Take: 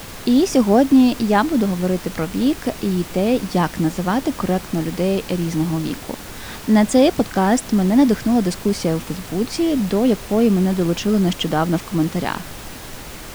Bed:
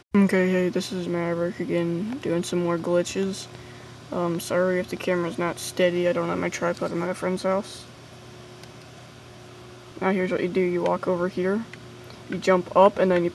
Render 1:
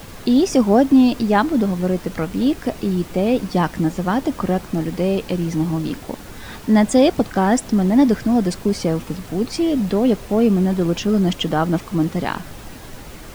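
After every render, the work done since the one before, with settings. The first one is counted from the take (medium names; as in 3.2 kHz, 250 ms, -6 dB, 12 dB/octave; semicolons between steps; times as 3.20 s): noise reduction 6 dB, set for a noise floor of -35 dBFS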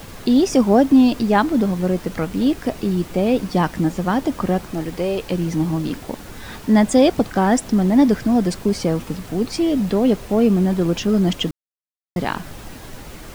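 4.73–5.31 s: peaking EQ 210 Hz -9 dB; 11.51–12.16 s: mute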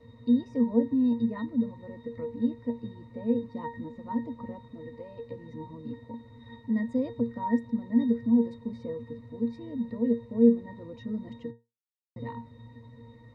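pitch-class resonator A#, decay 0.23 s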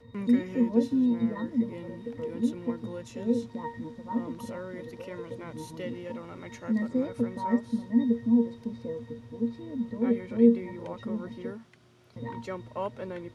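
add bed -17.5 dB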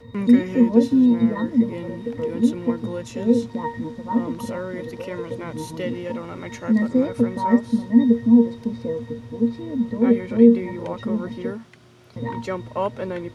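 trim +9 dB; peak limiter -3 dBFS, peak gain reduction 2.5 dB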